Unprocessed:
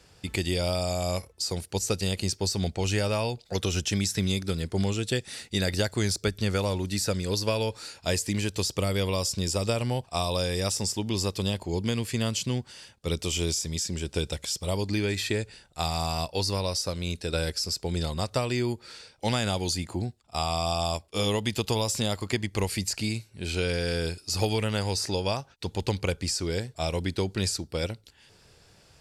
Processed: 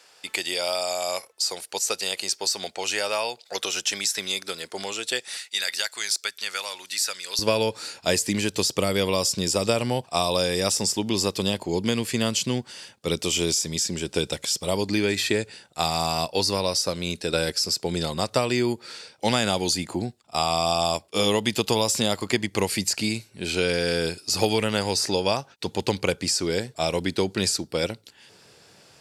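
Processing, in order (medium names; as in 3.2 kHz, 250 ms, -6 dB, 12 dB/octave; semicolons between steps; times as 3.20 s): high-pass 650 Hz 12 dB/octave, from 5.37 s 1.4 kHz, from 7.39 s 170 Hz; trim +5.5 dB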